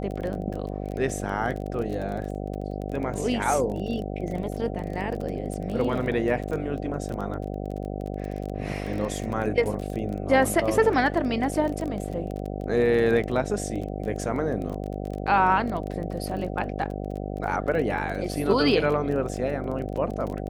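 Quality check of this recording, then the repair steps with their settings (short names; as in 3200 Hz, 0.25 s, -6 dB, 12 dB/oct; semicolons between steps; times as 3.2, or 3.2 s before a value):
buzz 50 Hz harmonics 15 -32 dBFS
crackle 21/s -30 dBFS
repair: de-click; de-hum 50 Hz, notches 15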